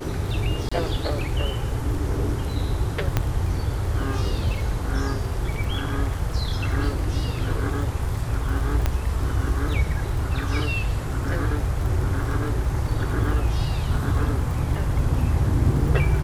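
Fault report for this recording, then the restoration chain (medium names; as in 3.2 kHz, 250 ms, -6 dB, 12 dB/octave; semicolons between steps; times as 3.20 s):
crackle 24 per s -29 dBFS
0.69–0.71 s: dropout 25 ms
3.17 s: pop -7 dBFS
8.86 s: pop -9 dBFS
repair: de-click; interpolate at 0.69 s, 25 ms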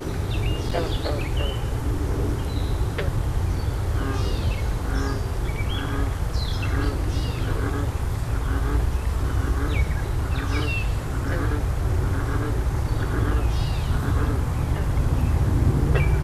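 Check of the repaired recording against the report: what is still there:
3.17 s: pop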